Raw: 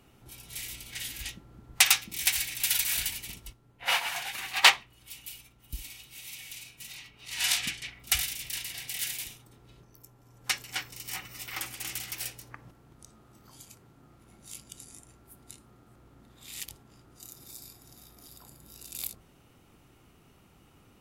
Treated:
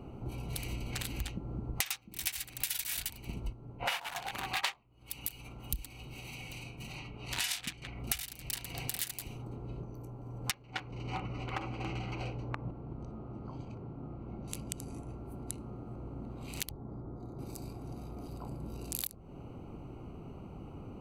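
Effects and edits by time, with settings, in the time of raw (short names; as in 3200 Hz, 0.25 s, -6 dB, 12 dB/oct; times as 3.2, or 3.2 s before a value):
4.64–5.86 mismatched tape noise reduction encoder only
10.51–14.48 air absorption 170 m
16.7–17.39 running mean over 16 samples
whole clip: Wiener smoothing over 25 samples; compressor 12:1, threshold -47 dBFS; gain +14.5 dB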